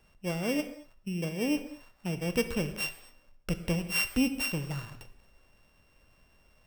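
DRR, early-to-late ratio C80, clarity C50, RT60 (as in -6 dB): 9.0 dB, 12.5 dB, 10.5 dB, not exponential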